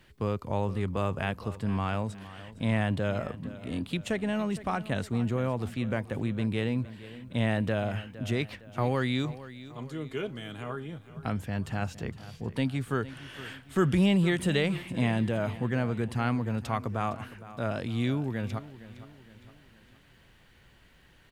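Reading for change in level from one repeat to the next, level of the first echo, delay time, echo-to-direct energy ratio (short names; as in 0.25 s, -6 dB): -6.5 dB, -16.0 dB, 0.461 s, -15.0 dB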